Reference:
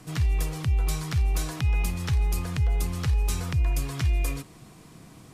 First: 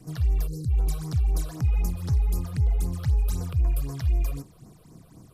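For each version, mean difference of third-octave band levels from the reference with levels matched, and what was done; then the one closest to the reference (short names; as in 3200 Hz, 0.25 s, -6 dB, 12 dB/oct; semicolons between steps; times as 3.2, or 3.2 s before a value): 5.5 dB: spectral gain 0.47–0.7, 530–3800 Hz -24 dB; bell 2500 Hz -8.5 dB 2.1 oct; phaser stages 8, 3.9 Hz, lowest notch 240–3500 Hz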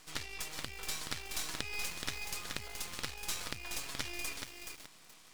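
9.0 dB: band-pass 4000 Hz, Q 0.62; half-wave rectifier; lo-fi delay 0.425 s, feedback 35%, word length 8-bit, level -5 dB; gain +4.5 dB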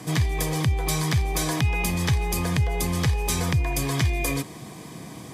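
2.5 dB: HPF 53 Hz; in parallel at -3 dB: limiter -26.5 dBFS, peak gain reduction 9.5 dB; on the sum: notch comb 1400 Hz; gain +6.5 dB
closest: third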